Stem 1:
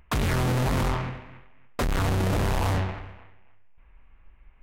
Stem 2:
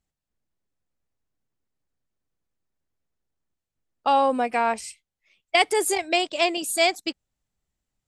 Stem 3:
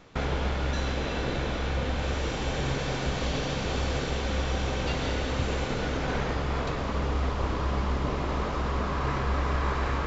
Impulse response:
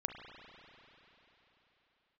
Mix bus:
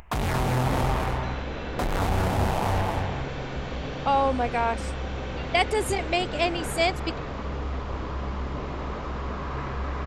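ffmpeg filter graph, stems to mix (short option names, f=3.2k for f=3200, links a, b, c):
-filter_complex "[0:a]equalizer=f=790:t=o:w=0.71:g=8.5,alimiter=limit=-21dB:level=0:latency=1:release=137,volume=1dB,asplit=2[a][b];[b]volume=-4dB[c];[1:a]highshelf=f=5.3k:g=-8,volume=-2.5dB[d];[2:a]acrossover=split=3500[e][f];[f]acompressor=threshold=-49dB:ratio=4:attack=1:release=60[g];[e][g]amix=inputs=2:normalize=0,highshelf=f=6.2k:g=-4.5,asoftclip=type=tanh:threshold=-17dB,adelay=500,volume=-2.5dB[h];[c]aecho=0:1:229:1[i];[a][d][h][i]amix=inputs=4:normalize=0,acompressor=mode=upward:threshold=-40dB:ratio=2.5"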